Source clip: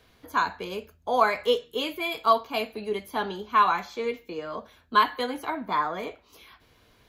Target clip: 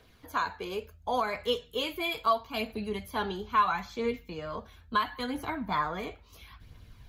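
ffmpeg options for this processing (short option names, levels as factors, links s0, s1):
-af "asubboost=boost=5:cutoff=170,alimiter=limit=0.178:level=0:latency=1:release=446,aphaser=in_gain=1:out_gain=1:delay=2.8:decay=0.35:speed=0.74:type=triangular,volume=0.794"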